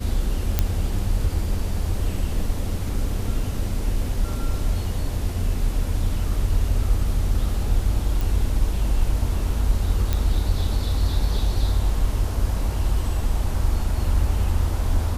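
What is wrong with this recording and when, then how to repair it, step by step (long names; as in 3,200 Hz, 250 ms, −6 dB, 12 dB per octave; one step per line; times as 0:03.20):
0:00.59: click −5 dBFS
0:08.21: click
0:10.13: click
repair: click removal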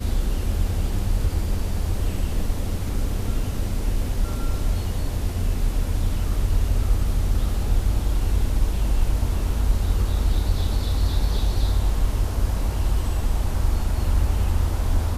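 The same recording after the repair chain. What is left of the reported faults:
none of them is left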